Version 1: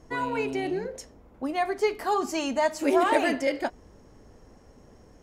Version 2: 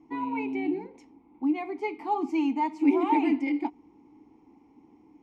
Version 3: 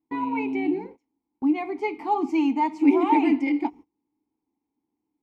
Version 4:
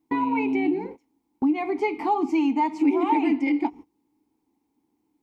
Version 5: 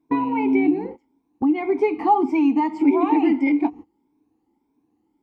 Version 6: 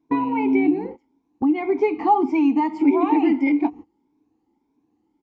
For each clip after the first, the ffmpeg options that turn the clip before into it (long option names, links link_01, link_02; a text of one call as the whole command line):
ffmpeg -i in.wav -filter_complex "[0:a]asplit=3[link_01][link_02][link_03];[link_01]bandpass=frequency=300:width_type=q:width=8,volume=0dB[link_04];[link_02]bandpass=frequency=870:width_type=q:width=8,volume=-6dB[link_05];[link_03]bandpass=frequency=2240:width_type=q:width=8,volume=-9dB[link_06];[link_04][link_05][link_06]amix=inputs=3:normalize=0,volume=9dB" out.wav
ffmpeg -i in.wav -af "agate=range=-28dB:threshold=-45dB:ratio=16:detection=peak,volume=4dB" out.wav
ffmpeg -i in.wav -af "acompressor=threshold=-32dB:ratio=2.5,volume=8.5dB" out.wav
ffmpeg -i in.wav -af "afftfilt=real='re*pow(10,9/40*sin(2*PI*(1.6*log(max(b,1)*sr/1024/100)/log(2)-(1.7)*(pts-256)/sr)))':imag='im*pow(10,9/40*sin(2*PI*(1.6*log(max(b,1)*sr/1024/100)/log(2)-(1.7)*(pts-256)/sr)))':win_size=1024:overlap=0.75,highshelf=frequency=3000:gain=-11.5,volume=3.5dB" out.wav
ffmpeg -i in.wav -af "aresample=16000,aresample=44100" out.wav